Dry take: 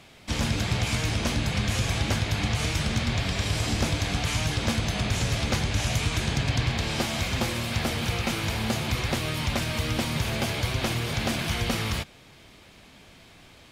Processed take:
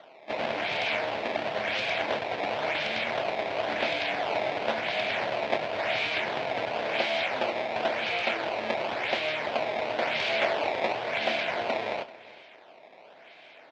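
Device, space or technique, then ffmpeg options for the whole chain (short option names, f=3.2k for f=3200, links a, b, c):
circuit-bent sampling toy: -filter_complex "[0:a]asettb=1/sr,asplit=3[a][b][c];[a]atrim=end=10.024[d];[b]atrim=start=10.02:end=10.95,asetpts=PTS-STARTPTS,afade=t=in:d=0.004:c=qsin,afade=t=out:st=0.926:d=0.004:c=qsin,aemphasis=mode=production:type=cd[e];[c]atrim=start=10.946[f];[d][e]acrossfade=d=0.004:c1=hsin:c2=qsin[g];[g][f]acrossfade=d=0.004:c1=qsin:c2=hsin,asplit=2[h][i];[i]adelay=27,volume=-12dB[j];[h][j]amix=inputs=2:normalize=0,acrusher=samples=17:mix=1:aa=0.000001:lfo=1:lforange=27.2:lforate=0.95,highpass=540,equalizer=f=640:t=q:w=4:g=8,equalizer=f=1.2k:t=q:w=4:g=-8,equalizer=f=2.3k:t=q:w=4:g=4,lowpass=f=4k:w=0.5412,lowpass=f=4k:w=1.3066,aecho=1:1:386:0.106,volume=2dB"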